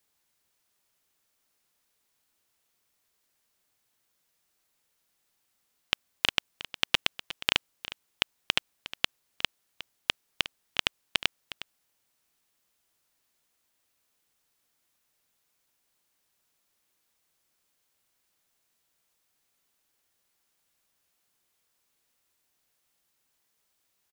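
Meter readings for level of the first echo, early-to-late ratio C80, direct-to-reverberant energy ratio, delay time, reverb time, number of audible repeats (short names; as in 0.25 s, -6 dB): -15.0 dB, none, none, 0.36 s, none, 1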